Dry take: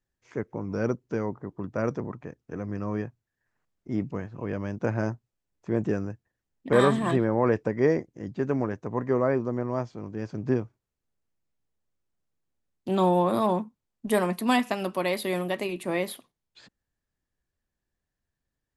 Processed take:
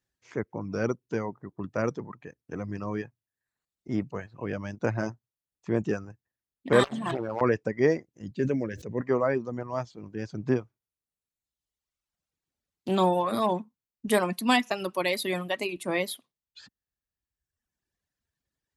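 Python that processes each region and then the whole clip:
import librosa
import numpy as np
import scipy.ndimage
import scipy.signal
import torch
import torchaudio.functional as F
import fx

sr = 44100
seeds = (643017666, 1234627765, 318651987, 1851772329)

y = fx.chain(x, sr, fx.notch(hz=7600.0, q=8.9),
    fx.overload_stage(gain_db=17.0),
    fx.transformer_sat(knee_hz=420.0), at=(6.83, 7.41))
y = fx.chain(y, sr, fx.band_shelf(hz=980.0, db=-14.0, octaves=1.2),
    fx.sustainer(db_per_s=38.0), at=(8.35, 9.01))
y = fx.dereverb_blind(y, sr, rt60_s=1.4)
y = scipy.signal.sosfilt(scipy.signal.butter(2, 44.0, 'highpass', fs=sr, output='sos'), y)
y = fx.peak_eq(y, sr, hz=4400.0, db=5.0, octaves=2.6)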